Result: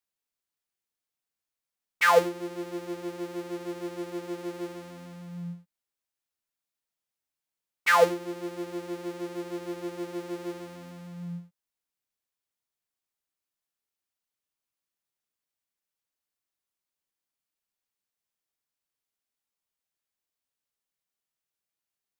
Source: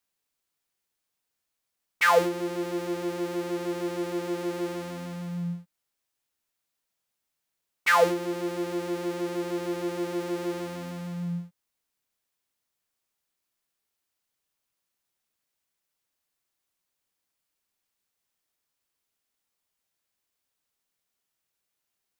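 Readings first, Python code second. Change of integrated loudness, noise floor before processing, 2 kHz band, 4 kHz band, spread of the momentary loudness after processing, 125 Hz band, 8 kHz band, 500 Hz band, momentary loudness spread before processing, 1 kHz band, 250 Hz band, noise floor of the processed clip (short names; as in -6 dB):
-1.0 dB, -83 dBFS, -0.5 dB, -1.5 dB, 21 LU, -6.0 dB, -2.0 dB, -1.0 dB, 14 LU, -0.5 dB, -5.0 dB, under -85 dBFS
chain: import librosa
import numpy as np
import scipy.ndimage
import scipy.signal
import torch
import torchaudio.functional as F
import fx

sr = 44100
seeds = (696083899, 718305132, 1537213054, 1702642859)

y = fx.upward_expand(x, sr, threshold_db=-35.0, expansion=1.5)
y = y * librosa.db_to_amplitude(1.5)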